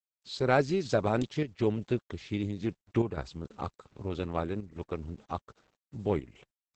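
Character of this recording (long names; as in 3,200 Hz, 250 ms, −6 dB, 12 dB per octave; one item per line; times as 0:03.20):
a quantiser's noise floor 10 bits, dither none
chopped level 0.63 Hz, depth 60%, duty 90%
Opus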